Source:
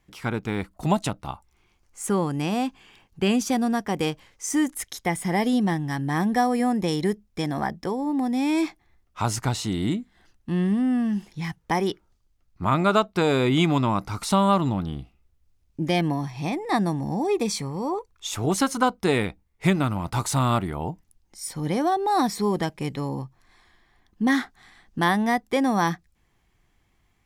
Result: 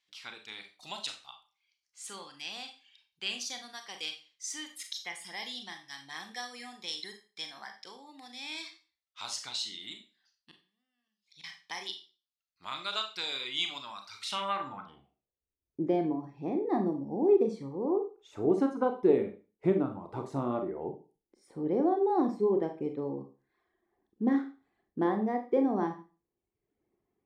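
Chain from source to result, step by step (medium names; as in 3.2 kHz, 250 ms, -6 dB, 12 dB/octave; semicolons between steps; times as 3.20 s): reverb removal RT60 0.93 s; 10.51–11.44 s: inverted gate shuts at -24 dBFS, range -32 dB; Schroeder reverb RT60 0.34 s, combs from 29 ms, DRR 5 dB; band-pass sweep 4 kHz -> 390 Hz, 14.12–15.48 s; trim +1.5 dB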